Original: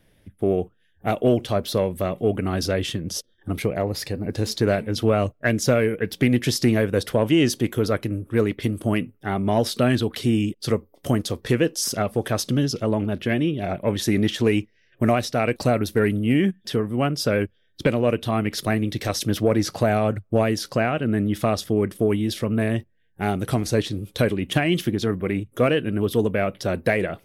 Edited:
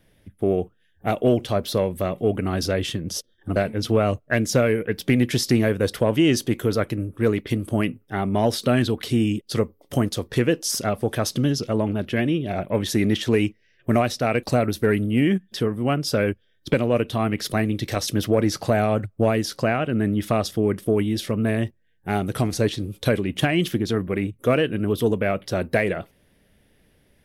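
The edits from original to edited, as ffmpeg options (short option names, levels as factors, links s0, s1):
-filter_complex "[0:a]asplit=2[s0][s1];[s0]atrim=end=3.562[s2];[s1]atrim=start=4.688[s3];[s2][s3]acrossfade=d=0.004:c1=hsin:c2=hsin"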